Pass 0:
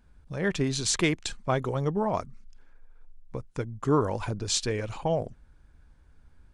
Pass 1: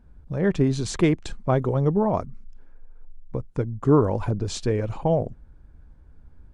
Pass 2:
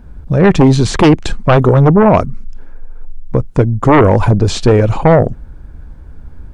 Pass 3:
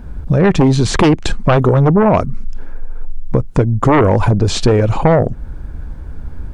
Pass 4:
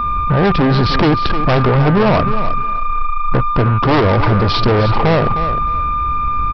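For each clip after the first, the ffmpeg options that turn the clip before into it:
-af "tiltshelf=f=1300:g=7.5"
-filter_complex "[0:a]acrossover=split=3700[s0][s1];[s1]alimiter=level_in=3.16:limit=0.0631:level=0:latency=1:release=127,volume=0.316[s2];[s0][s2]amix=inputs=2:normalize=0,aeval=exprs='0.531*sin(PI/2*3.16*val(0)/0.531)':c=same,volume=1.41"
-af "acompressor=threshold=0.126:ratio=2.5,volume=1.88"
-af "aeval=exprs='val(0)+0.1*sin(2*PI*1200*n/s)':c=same,aresample=11025,asoftclip=type=tanh:threshold=0.168,aresample=44100,aecho=1:1:309|618:0.299|0.0537,volume=1.88"

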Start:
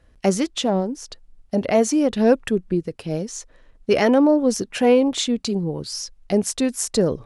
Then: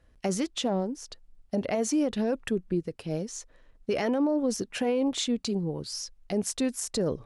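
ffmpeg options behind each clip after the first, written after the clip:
-af "alimiter=limit=0.224:level=0:latency=1:release=33,volume=0.501"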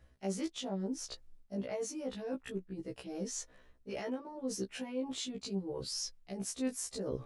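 -af "areverse,acompressor=threshold=0.0178:ratio=12,areverse,afftfilt=real='re*1.73*eq(mod(b,3),0)':imag='im*1.73*eq(mod(b,3),0)':win_size=2048:overlap=0.75,volume=1.33"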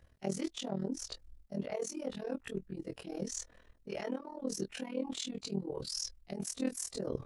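-af "tremolo=f=40:d=0.889,volume=1.58"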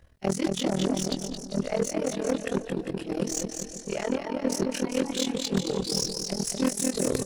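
-af "aecho=1:1:220|396|536.8|649.4|739.6:0.631|0.398|0.251|0.158|0.1,aeval=exprs='0.0891*(cos(1*acos(clip(val(0)/0.0891,-1,1)))-cos(1*PI/2))+0.0251*(cos(5*acos(clip(val(0)/0.0891,-1,1)))-cos(5*PI/2))+0.02*(cos(7*acos(clip(val(0)/0.0891,-1,1)))-cos(7*PI/2))':c=same,volume=2.24"

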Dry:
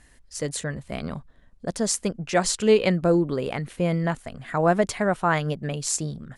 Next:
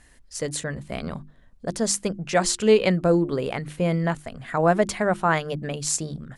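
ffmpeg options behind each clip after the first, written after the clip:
-af "bandreject=f=50:t=h:w=6,bandreject=f=100:t=h:w=6,bandreject=f=150:t=h:w=6,bandreject=f=200:t=h:w=6,bandreject=f=250:t=h:w=6,bandreject=f=300:t=h:w=6,bandreject=f=350:t=h:w=6,volume=1.12"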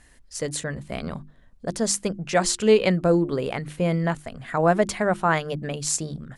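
-af anull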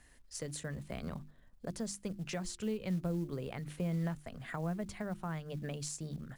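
-filter_complex "[0:a]acrossover=split=190[s0][s1];[s1]acompressor=threshold=0.0251:ratio=10[s2];[s0][s2]amix=inputs=2:normalize=0,acrusher=bits=7:mode=log:mix=0:aa=0.000001,volume=0.422"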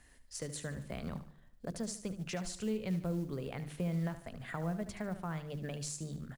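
-af "aecho=1:1:74|148|222|296:0.251|0.103|0.0422|0.0173"

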